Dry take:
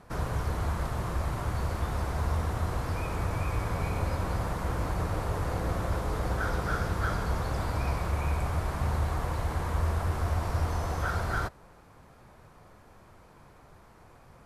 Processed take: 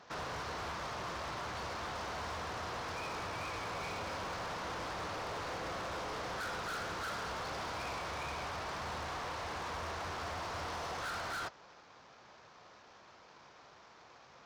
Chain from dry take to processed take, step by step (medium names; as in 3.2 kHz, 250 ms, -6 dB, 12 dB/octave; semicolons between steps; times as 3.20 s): CVSD coder 32 kbps; high-pass 720 Hz 6 dB/octave; hard clipper -39 dBFS, distortion -8 dB; trim +1.5 dB